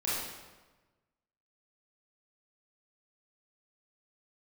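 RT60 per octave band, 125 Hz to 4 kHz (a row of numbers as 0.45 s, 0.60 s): 1.5 s, 1.3 s, 1.3 s, 1.2 s, 1.1 s, 0.95 s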